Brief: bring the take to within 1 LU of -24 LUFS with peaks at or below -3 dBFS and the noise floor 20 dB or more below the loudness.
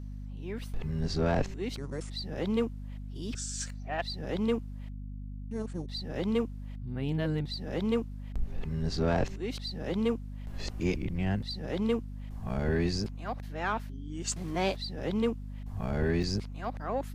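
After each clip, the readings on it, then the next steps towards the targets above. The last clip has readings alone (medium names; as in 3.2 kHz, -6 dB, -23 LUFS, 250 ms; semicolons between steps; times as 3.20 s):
dropouts 1; longest dropout 4.8 ms; hum 50 Hz; highest harmonic 250 Hz; hum level -37 dBFS; loudness -33.5 LUFS; peak level -18.0 dBFS; loudness target -24.0 LUFS
-> interpolate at 16.23 s, 4.8 ms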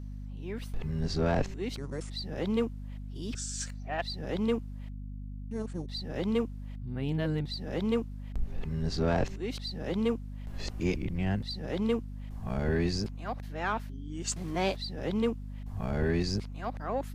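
dropouts 0; hum 50 Hz; highest harmonic 250 Hz; hum level -37 dBFS
-> hum notches 50/100/150/200/250 Hz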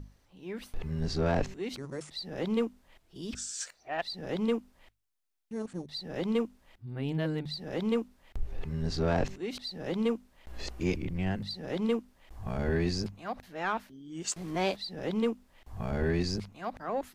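hum not found; loudness -34.0 LUFS; peak level -18.0 dBFS; loudness target -24.0 LUFS
-> trim +10 dB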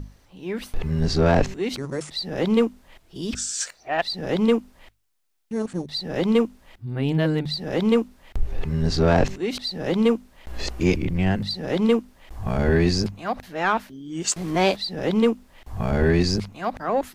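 loudness -24.0 LUFS; peak level -8.0 dBFS; noise floor -57 dBFS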